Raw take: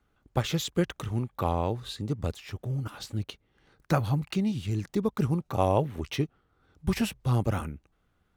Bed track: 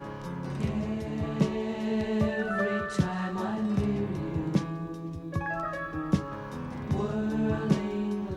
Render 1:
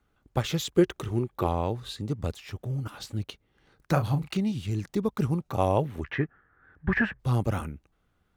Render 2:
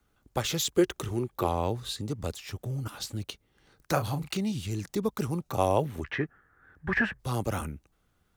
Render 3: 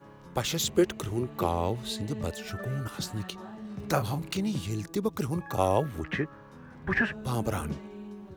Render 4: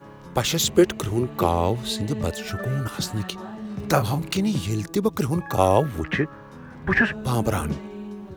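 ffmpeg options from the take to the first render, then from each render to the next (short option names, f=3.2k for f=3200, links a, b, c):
-filter_complex "[0:a]asettb=1/sr,asplit=3[a][b][c];[a]atrim=end=0.744[d];[b]atrim=start=0.74:end=1.47,asetpts=PTS-STARTPTS,afade=t=in:d=0.004:c=qsin,afade=t=out:st=0.726:d=0.004:c=qsin,equalizer=f=370:w=3.5:g=10.5[e];[c]atrim=start=1.466[f];[d][e]acrossfade=d=0.004:c1=hsin:c2=qsin[g];[g][f]acrossfade=d=0.004:c1=qsin:c2=hsin,asettb=1/sr,asplit=3[h][i][j];[h]atrim=end=3.924[k];[i]atrim=start=3.92:end=4.37,asetpts=PTS-STARTPTS,afade=t=in:d=0.004:c=qsin,afade=t=out:st=0.446:d=0.004:c=qsin,asplit=2[l][m];[m]adelay=36,volume=-9dB[n];[l][n]amix=inputs=2:normalize=0,atrim=end_sample=19845[o];[j]atrim=start=4.366[p];[k][o]acrossfade=d=0.004:c1=hsin:c2=qsin[q];[q][p]acrossfade=d=0.004:c1=qsin:c2=hsin,asettb=1/sr,asplit=3[r][s][t];[r]atrim=end=6.044[u];[s]atrim=start=6.04:end=7.19,asetpts=PTS-STARTPTS,afade=t=in:d=0.004:c=qsin,afade=t=out:st=1.146:d=0.004:c=qsin,lowpass=f=1.7k:t=q:w=11[v];[t]atrim=start=7.186[w];[u][v]acrossfade=d=0.004:c1=hsin:c2=qsin[x];[x][w]acrossfade=d=0.004:c1=qsin:c2=hsin"
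-filter_complex "[0:a]acrossover=split=280|4600[a][b][c];[a]alimiter=level_in=4.5dB:limit=-24dB:level=0:latency=1,volume=-4.5dB[d];[c]acontrast=87[e];[d][b][e]amix=inputs=3:normalize=0"
-filter_complex "[1:a]volume=-12dB[a];[0:a][a]amix=inputs=2:normalize=0"
-af "volume=7dB"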